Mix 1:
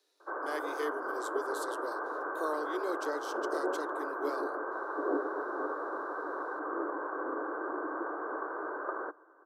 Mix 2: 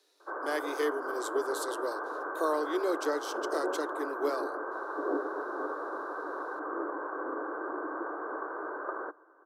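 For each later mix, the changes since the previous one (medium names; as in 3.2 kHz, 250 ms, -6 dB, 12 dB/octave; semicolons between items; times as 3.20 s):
speech +5.5 dB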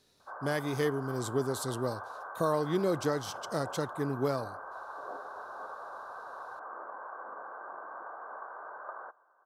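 background: add ladder high-pass 600 Hz, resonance 40%; master: remove Chebyshev high-pass 300 Hz, order 6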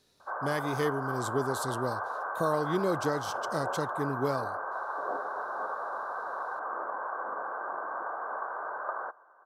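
background +8.0 dB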